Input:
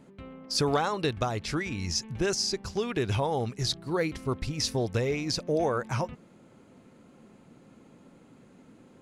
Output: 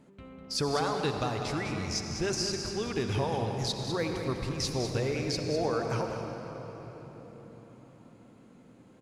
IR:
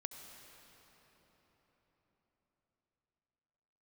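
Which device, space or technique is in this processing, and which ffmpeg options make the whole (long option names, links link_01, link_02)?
cave: -filter_complex "[0:a]aecho=1:1:200:0.355[link_01];[1:a]atrim=start_sample=2205[link_02];[link_01][link_02]afir=irnorm=-1:irlink=0"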